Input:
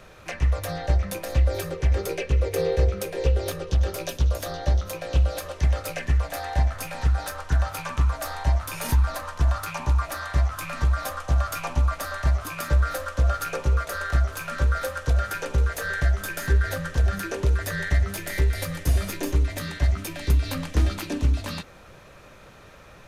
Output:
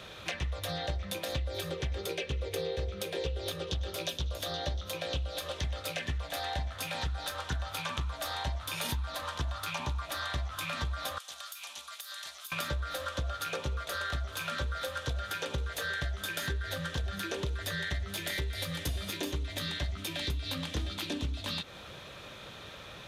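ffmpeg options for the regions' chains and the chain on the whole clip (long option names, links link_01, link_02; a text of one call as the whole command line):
ffmpeg -i in.wav -filter_complex "[0:a]asettb=1/sr,asplit=3[link_01][link_02][link_03];[link_01]atrim=end=11.184[link_04];[link_02]atrim=start=11.18:end=12.52,asetpts=PTS-STARTPTS,afade=type=in:duration=0.004:curve=qsin,afade=type=out:start_time=1.336:duration=0.004:curve=qsin,highpass=frequency=250:poles=1,aderivative,acompressor=threshold=-41dB:ratio=16:attack=3.2:release=140:knee=1:detection=peak[link_05];[link_03]atrim=start=12.516[link_06];[link_04][link_05]acrossfade=duration=0.004:curve1=hsin:curve2=qsin[link_07];[link_07][link_06]acrossfade=duration=0.004:curve1=qsin:curve2=hsin,highpass=60,equalizer=frequency=3500:width_type=o:width=0.6:gain=13,acompressor=threshold=-32dB:ratio=6" out.wav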